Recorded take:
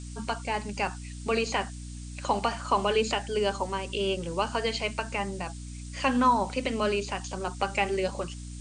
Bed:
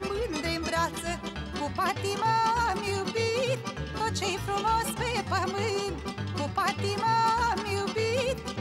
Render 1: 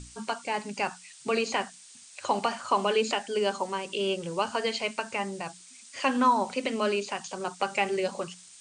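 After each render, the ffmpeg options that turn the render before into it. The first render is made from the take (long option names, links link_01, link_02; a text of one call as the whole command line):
ffmpeg -i in.wav -af "bandreject=frequency=60:width_type=h:width=6,bandreject=frequency=120:width_type=h:width=6,bandreject=frequency=180:width_type=h:width=6,bandreject=frequency=240:width_type=h:width=6,bandreject=frequency=300:width_type=h:width=6" out.wav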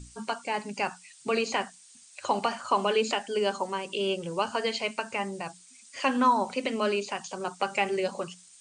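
ffmpeg -i in.wav -af "afftdn=noise_reduction=6:noise_floor=-51" out.wav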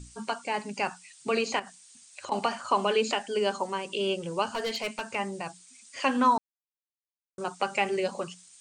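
ffmpeg -i in.wav -filter_complex "[0:a]asettb=1/sr,asplit=3[link_01][link_02][link_03];[link_01]atrim=end=1.594[link_04];[link_02]atrim=start=1.59:end=2.32,asetpts=PTS-STARTPTS,afade=type=in:duration=0.004:curve=qsin,afade=type=out:start_time=0.726:duration=0.004:curve=qsin,acompressor=threshold=-35dB:ratio=6:attack=3.2:release=140:knee=1:detection=peak[link_05];[link_03]atrim=start=2.316[link_06];[link_04][link_05]acrossfade=duration=0.004:curve1=hsin:curve2=qsin[link_07];[link_07][link_06]acrossfade=duration=0.004:curve1=qsin:curve2=hsin,asettb=1/sr,asplit=3[link_08][link_09][link_10];[link_08]atrim=end=4.544[link_11];[link_09]atrim=start=4.54:end=5.15,asetpts=PTS-STARTPTS,afade=type=in:duration=0.004:curve=qsin,afade=type=out:start_time=0.606:duration=0.004:curve=qsin,asoftclip=type=hard:threshold=-26.5dB[link_12];[link_10]atrim=start=5.146[link_13];[link_11][link_12]acrossfade=duration=0.004:curve1=hsin:curve2=qsin[link_14];[link_14][link_13]acrossfade=duration=0.004:curve1=qsin:curve2=hsin,asplit=3[link_15][link_16][link_17];[link_15]atrim=end=6.38,asetpts=PTS-STARTPTS,afade=type=out:start_time=6.376:duration=0.004:curve=hsin[link_18];[link_16]atrim=start=6.38:end=7.38,asetpts=PTS-STARTPTS,volume=0[link_19];[link_17]atrim=start=7.38,asetpts=PTS-STARTPTS,afade=type=in:duration=0.004:curve=hsin[link_20];[link_18][link_19][link_20]concat=n=3:v=0:a=1" out.wav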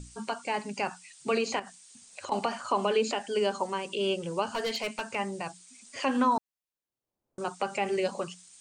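ffmpeg -i in.wav -filter_complex "[0:a]acrossover=split=800[link_01][link_02];[link_01]acompressor=mode=upward:threshold=-43dB:ratio=2.5[link_03];[link_02]alimiter=limit=-23dB:level=0:latency=1:release=97[link_04];[link_03][link_04]amix=inputs=2:normalize=0" out.wav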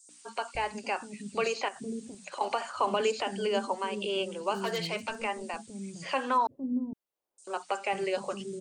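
ffmpeg -i in.wav -filter_complex "[0:a]acrossover=split=320|5800[link_01][link_02][link_03];[link_02]adelay=90[link_04];[link_01]adelay=550[link_05];[link_05][link_04][link_03]amix=inputs=3:normalize=0" out.wav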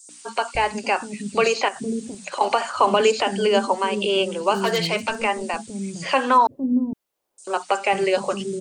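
ffmpeg -i in.wav -af "volume=10.5dB" out.wav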